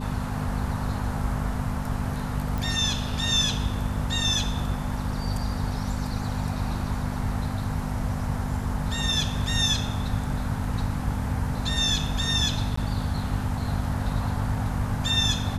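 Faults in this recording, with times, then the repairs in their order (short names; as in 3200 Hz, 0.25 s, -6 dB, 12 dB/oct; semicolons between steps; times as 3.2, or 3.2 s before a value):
hum 50 Hz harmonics 5 -31 dBFS
2.58 pop
12.76–12.77 gap 14 ms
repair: de-click; de-hum 50 Hz, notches 5; interpolate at 12.76, 14 ms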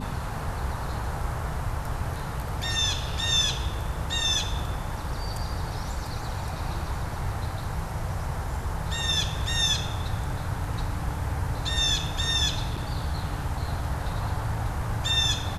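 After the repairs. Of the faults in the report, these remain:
none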